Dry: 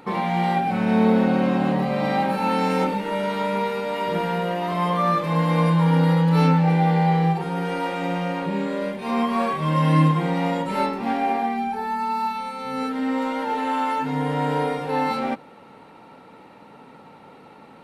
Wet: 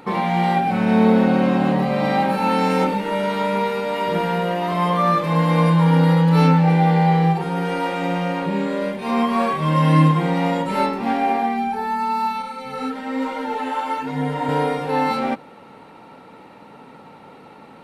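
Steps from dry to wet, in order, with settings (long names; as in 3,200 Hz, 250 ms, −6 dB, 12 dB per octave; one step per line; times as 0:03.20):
0:12.42–0:14.49: multi-voice chorus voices 2, 1.1 Hz, delay 11 ms, depth 3 ms
level +3 dB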